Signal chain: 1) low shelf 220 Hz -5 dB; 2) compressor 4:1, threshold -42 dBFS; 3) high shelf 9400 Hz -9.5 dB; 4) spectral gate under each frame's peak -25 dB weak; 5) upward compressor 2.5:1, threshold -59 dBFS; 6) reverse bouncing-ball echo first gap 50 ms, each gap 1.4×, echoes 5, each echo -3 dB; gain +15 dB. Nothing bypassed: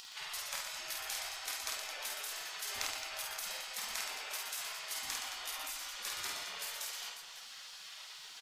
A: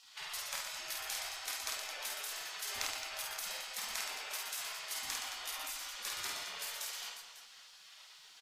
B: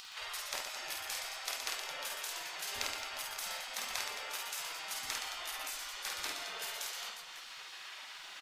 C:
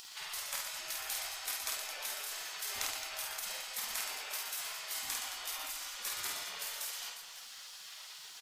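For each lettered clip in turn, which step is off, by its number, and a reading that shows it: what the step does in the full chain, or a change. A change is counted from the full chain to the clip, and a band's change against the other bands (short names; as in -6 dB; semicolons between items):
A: 5, momentary loudness spread change +4 LU; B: 1, 8 kHz band -3.0 dB; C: 3, 8 kHz band +2.0 dB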